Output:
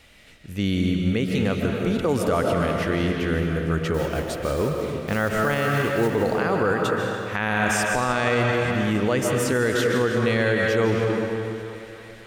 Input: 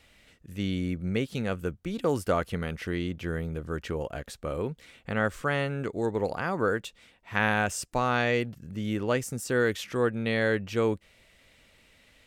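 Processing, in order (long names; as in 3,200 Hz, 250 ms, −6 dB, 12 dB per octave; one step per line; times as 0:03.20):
0:03.94–0:06.16: one scale factor per block 5 bits
notch filter 7,800 Hz, Q 29
feedback echo with a high-pass in the loop 293 ms, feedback 78%, high-pass 220 Hz, level −20 dB
convolution reverb RT60 2.4 s, pre-delay 105 ms, DRR 2 dB
brickwall limiter −19 dBFS, peak gain reduction 9.5 dB
level +7 dB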